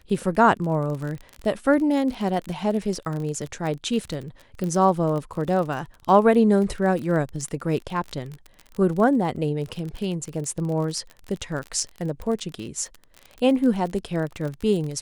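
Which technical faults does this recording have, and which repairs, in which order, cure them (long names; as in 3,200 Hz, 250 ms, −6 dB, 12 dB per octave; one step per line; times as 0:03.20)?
surface crackle 39 per second −29 dBFS
0:04.64: click −17 dBFS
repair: click removal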